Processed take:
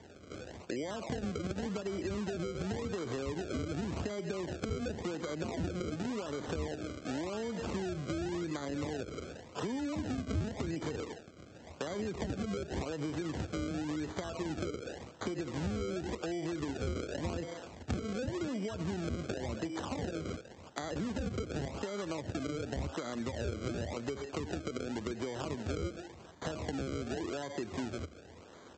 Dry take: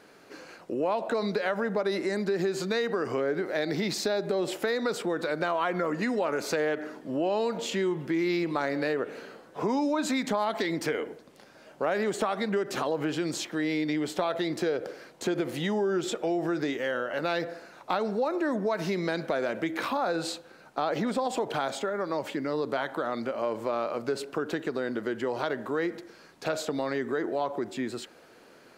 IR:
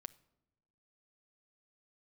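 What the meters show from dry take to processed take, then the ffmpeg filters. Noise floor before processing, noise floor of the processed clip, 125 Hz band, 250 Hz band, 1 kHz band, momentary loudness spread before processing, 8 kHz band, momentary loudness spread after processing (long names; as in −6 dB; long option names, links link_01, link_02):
−54 dBFS, −54 dBFS, +1.0 dB, −6.0 dB, −12.5 dB, 6 LU, −7.0 dB, 6 LU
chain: -filter_complex "[0:a]aresample=16000,acrusher=samples=12:mix=1:aa=0.000001:lfo=1:lforange=12:lforate=0.9,aresample=44100,acrossover=split=360[link_01][link_02];[link_02]acompressor=threshold=-36dB:ratio=6[link_03];[link_01][link_03]amix=inputs=2:normalize=0,highpass=62,acompressor=threshold=-34dB:ratio=6,equalizer=frequency=80:width_type=o:width=0.66:gain=12"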